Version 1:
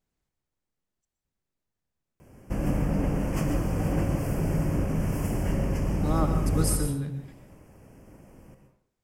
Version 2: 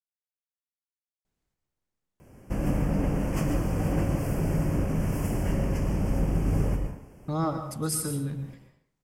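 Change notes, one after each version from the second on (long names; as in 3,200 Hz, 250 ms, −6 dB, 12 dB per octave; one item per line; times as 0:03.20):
speech: entry +1.25 s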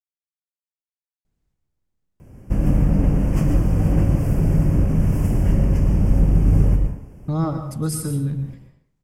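master: add low-shelf EQ 250 Hz +12 dB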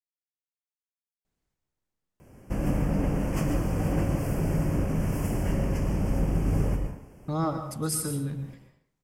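master: add low-shelf EQ 250 Hz −12 dB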